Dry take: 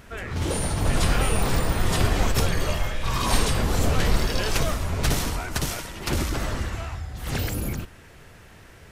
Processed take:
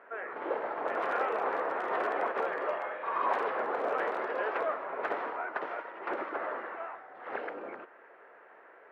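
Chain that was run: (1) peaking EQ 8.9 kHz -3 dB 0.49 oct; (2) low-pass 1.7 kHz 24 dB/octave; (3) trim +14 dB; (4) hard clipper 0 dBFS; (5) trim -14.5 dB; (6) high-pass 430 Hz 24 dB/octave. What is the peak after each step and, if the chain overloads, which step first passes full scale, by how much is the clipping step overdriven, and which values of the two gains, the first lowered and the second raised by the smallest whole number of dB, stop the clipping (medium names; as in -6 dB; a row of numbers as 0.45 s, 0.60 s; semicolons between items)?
-8.0 dBFS, -9.0 dBFS, +5.0 dBFS, 0.0 dBFS, -14.5 dBFS, -17.5 dBFS; step 3, 5.0 dB; step 3 +9 dB, step 5 -9.5 dB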